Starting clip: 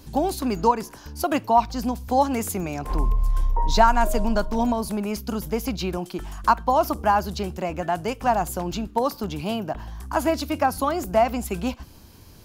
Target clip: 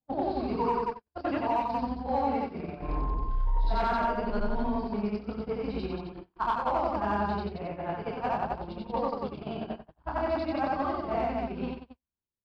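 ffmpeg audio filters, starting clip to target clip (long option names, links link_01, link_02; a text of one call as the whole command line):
ffmpeg -i in.wav -filter_complex "[0:a]afftfilt=real='re':imag='-im':win_size=8192:overlap=0.75,aresample=11025,volume=16.5dB,asoftclip=hard,volume=-16.5dB,aresample=44100,lowpass=frequency=1900:poles=1,bandreject=frequency=60:width_type=h:width=6,bandreject=frequency=120:width_type=h:width=6,bandreject=frequency=180:width_type=h:width=6,bandreject=frequency=240:width_type=h:width=6,bandreject=frequency=300:width_type=h:width=6,bandreject=frequency=360:width_type=h:width=6,asplit=2[link_01][link_02];[link_02]asoftclip=type=tanh:threshold=-30.5dB,volume=-11dB[link_03];[link_01][link_03]amix=inputs=2:normalize=0,adynamicequalizer=threshold=0.0141:dfrequency=700:dqfactor=2.2:tfrequency=700:tqfactor=2.2:attack=5:release=100:ratio=0.375:range=2:mode=cutabove:tftype=bell,aecho=1:1:29.15|180.8:0.708|0.708,acompressor=threshold=-38dB:ratio=2,agate=range=-54dB:threshold=-34dB:ratio=16:detection=peak,equalizer=frequency=66:width_type=o:width=2.2:gain=-3,volume=5.5dB" out.wav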